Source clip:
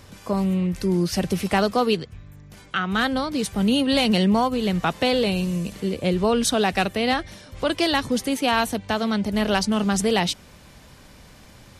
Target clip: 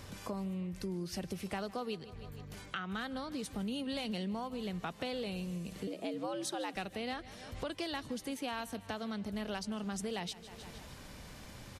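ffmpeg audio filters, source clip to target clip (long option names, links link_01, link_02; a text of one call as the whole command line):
ffmpeg -i in.wav -filter_complex "[0:a]asettb=1/sr,asplit=3[link_01][link_02][link_03];[link_01]atrim=end=5.874[link_04];[link_02]atrim=start=5.87:end=6.76,asetpts=PTS-STARTPTS,afade=type=in:duration=0.004:curve=qsin,afade=type=out:start_time=0.886:duration=0.004:curve=qsin,afreqshift=100[link_05];[link_03]atrim=start=6.756[link_06];[link_04][link_05]acrossfade=duration=0.004:curve1=hsin:curve2=qsin[link_07];[link_07][link_06]acrossfade=duration=0.004:curve1=qsin:curve2=hsin,aecho=1:1:155|310|465|620:0.0891|0.0499|0.0279|0.0157,acompressor=threshold=-39dB:ratio=3,volume=-2.5dB" out.wav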